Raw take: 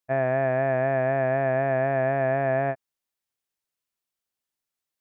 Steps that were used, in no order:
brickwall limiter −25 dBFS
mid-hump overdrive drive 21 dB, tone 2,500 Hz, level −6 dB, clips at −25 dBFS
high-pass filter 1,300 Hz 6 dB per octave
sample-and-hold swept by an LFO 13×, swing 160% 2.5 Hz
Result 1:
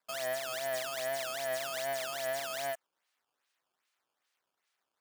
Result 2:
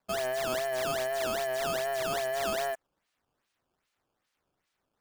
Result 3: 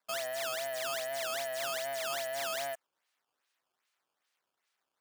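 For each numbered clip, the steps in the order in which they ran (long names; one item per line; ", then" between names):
mid-hump overdrive, then sample-and-hold swept by an LFO, then high-pass filter, then brickwall limiter
high-pass filter, then mid-hump overdrive, then sample-and-hold swept by an LFO, then brickwall limiter
brickwall limiter, then mid-hump overdrive, then sample-and-hold swept by an LFO, then high-pass filter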